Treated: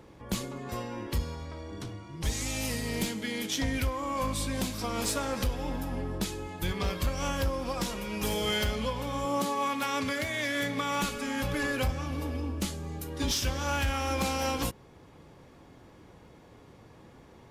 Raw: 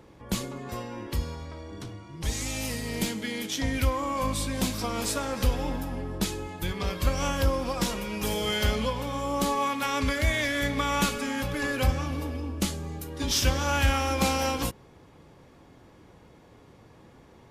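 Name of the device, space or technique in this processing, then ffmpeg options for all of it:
limiter into clipper: -filter_complex "[0:a]alimiter=limit=-18.5dB:level=0:latency=1:release=494,asoftclip=type=hard:threshold=-22dB,asettb=1/sr,asplit=3[link_01][link_02][link_03];[link_01]atrim=end=9.254[link_04];[link_02]atrim=start=9.25:end=11.02,asetpts=PTS-STARTPTS,afade=type=in:duration=0.004:curve=qsin,afade=type=out:start_time=1.766:duration=0.004:curve=qsin,highpass=frequency=110:width=0.5412,highpass=frequency=110:width=1.3066[link_05];[link_03]atrim=start=11.016[link_06];[link_04][link_05]acrossfade=duration=0.004:curve1=hsin:curve2=qsin[link_07];[link_07][link_06]acrossfade=duration=0.004:curve1=qsin:curve2=hsin"

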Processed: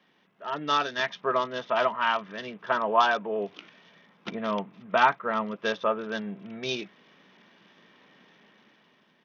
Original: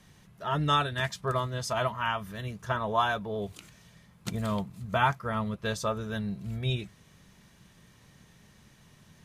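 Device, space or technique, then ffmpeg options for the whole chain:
Bluetooth headset: -af "highpass=frequency=240:width=0.5412,highpass=frequency=240:width=1.3066,dynaudnorm=framelen=240:gausssize=7:maxgain=8dB,aresample=8000,aresample=44100,volume=-3dB" -ar 48000 -c:a sbc -b:a 64k

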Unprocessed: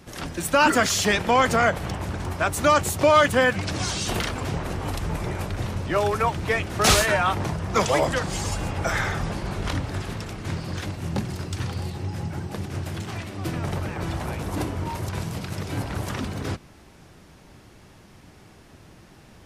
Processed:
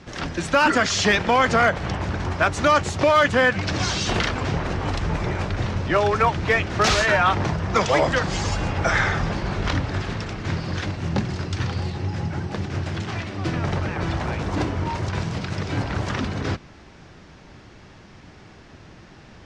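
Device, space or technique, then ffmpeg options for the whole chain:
limiter into clipper: -af "lowpass=frequency=6300:width=0.5412,lowpass=frequency=6300:width=1.3066,alimiter=limit=-12dB:level=0:latency=1:release=260,asoftclip=type=hard:threshold=-14.5dB,equalizer=frequency=1700:width=1.5:gain=2.5,volume=3.5dB"

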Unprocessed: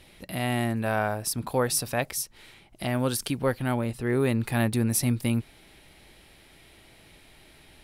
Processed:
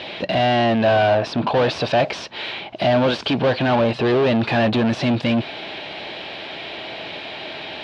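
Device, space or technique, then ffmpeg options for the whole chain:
overdrive pedal into a guitar cabinet: -filter_complex "[0:a]asettb=1/sr,asplit=3[link_01][link_02][link_03];[link_01]atrim=end=1.134[link_04];[link_02]atrim=start=1.13:end=1.63,asetpts=PTS-STARTPTS,afade=type=in:duration=0.004:curve=qsin,afade=type=out:start_time=0.496:duration=0.004:curve=qsin,highshelf=frequency=3500:gain=-10[link_05];[link_03]atrim=start=1.626[link_06];[link_04][link_05]acrossfade=duration=0.004:curve1=hsin:curve2=qsin[link_07];[link_07][link_06]acrossfade=duration=0.004:curve1=qsin:curve2=hsin,asplit=2[link_08][link_09];[link_09]highpass=frequency=720:poles=1,volume=34dB,asoftclip=type=tanh:threshold=-10.5dB[link_10];[link_08][link_10]amix=inputs=2:normalize=0,lowpass=frequency=6200:poles=1,volume=-6dB,highpass=81,equalizer=frequency=640:width_type=q:width=4:gain=5,equalizer=frequency=1300:width_type=q:width=4:gain=-5,equalizer=frequency=2000:width_type=q:width=4:gain=-7,lowpass=frequency=3900:width=0.5412,lowpass=frequency=3900:width=1.3066"

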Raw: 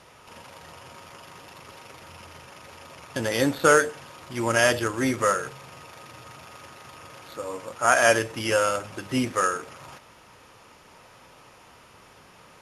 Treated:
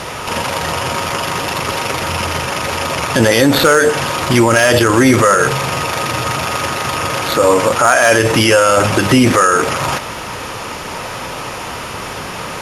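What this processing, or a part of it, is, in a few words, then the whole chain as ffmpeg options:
loud club master: -af "acompressor=threshold=-24dB:ratio=2.5,asoftclip=type=hard:threshold=-16.5dB,alimiter=level_in=27.5dB:limit=-1dB:release=50:level=0:latency=1,volume=-1dB"

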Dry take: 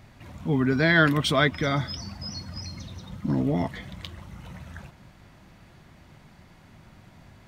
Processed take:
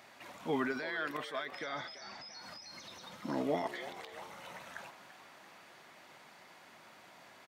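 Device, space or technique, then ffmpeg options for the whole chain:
de-esser from a sidechain: -filter_complex "[0:a]highpass=500,asplit=2[link_01][link_02];[link_02]highpass=5100,apad=whole_len=329450[link_03];[link_01][link_03]sidechaincompress=threshold=-52dB:ratio=8:attack=0.59:release=72,asettb=1/sr,asplit=3[link_04][link_05][link_06];[link_04]atrim=end=1.594[link_07];[link_05]atrim=start=1.59:end=2.33,asetpts=PTS-STARTPTS,afade=type=in:duration=0.004:curve=qsin,afade=type=out:start_time=0.736:duration=0.004:curve=qsin,lowpass=frequency=6600:width=0.5412,lowpass=frequency=6600:width=1.3066[link_08];[link_06]atrim=start=2.326[link_09];[link_07][link_08]acrossfade=duration=0.004:curve1=hsin:curve2=qsin[link_10];[link_10][link_09]acrossfade=duration=0.004:curve1=qsin:curve2=hsin,asplit=7[link_11][link_12][link_13][link_14][link_15][link_16][link_17];[link_12]adelay=338,afreqshift=95,volume=-14dB[link_18];[link_13]adelay=676,afreqshift=190,volume=-18.7dB[link_19];[link_14]adelay=1014,afreqshift=285,volume=-23.5dB[link_20];[link_15]adelay=1352,afreqshift=380,volume=-28.2dB[link_21];[link_16]adelay=1690,afreqshift=475,volume=-32.9dB[link_22];[link_17]adelay=2028,afreqshift=570,volume=-37.7dB[link_23];[link_11][link_18][link_19][link_20][link_21][link_22][link_23]amix=inputs=7:normalize=0,volume=1dB"

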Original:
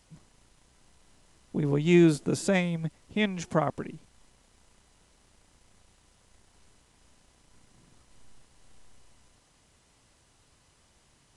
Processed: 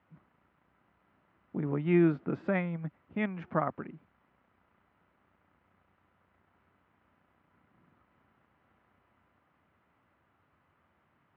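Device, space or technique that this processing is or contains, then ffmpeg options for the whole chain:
bass cabinet: -af "highpass=frequency=82:width=0.5412,highpass=frequency=82:width=1.3066,equalizer=frequency=120:width_type=q:width=4:gain=-7,equalizer=frequency=450:width_type=q:width=4:gain=-4,equalizer=frequency=1300:width_type=q:width=4:gain=6,lowpass=frequency=2200:width=0.5412,lowpass=frequency=2200:width=1.3066,volume=-4dB"

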